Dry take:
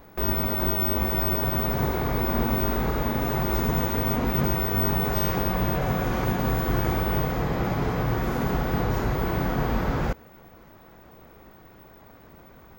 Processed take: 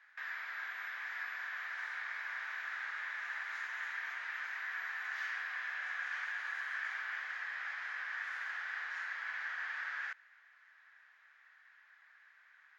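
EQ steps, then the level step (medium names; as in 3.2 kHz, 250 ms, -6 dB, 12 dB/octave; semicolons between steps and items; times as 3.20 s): ladder high-pass 1.6 kHz, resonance 75%; distance through air 90 m; +1.0 dB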